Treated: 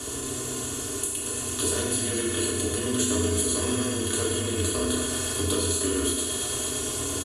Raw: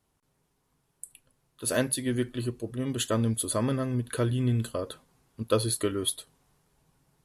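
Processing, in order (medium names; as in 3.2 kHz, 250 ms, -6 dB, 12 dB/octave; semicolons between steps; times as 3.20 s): spectral levelling over time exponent 0.4; peaking EQ 7.3 kHz +12.5 dB 0.93 oct; hum notches 60/120 Hz; thinning echo 113 ms, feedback 84%, high-pass 410 Hz, level -12 dB; compression, threshold -28 dBFS, peak gain reduction 12.5 dB; FDN reverb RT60 0.98 s, low-frequency decay 1.25×, high-frequency decay 0.95×, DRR -3 dB; frequency shift -25 Hz; comb 2.8 ms, depth 71%; trim -1.5 dB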